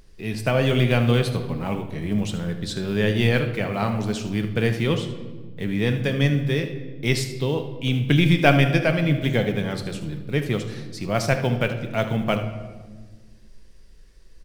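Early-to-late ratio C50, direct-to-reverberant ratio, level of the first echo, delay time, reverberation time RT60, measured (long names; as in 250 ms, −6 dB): 8.5 dB, 6.0 dB, −12.5 dB, 76 ms, 1.5 s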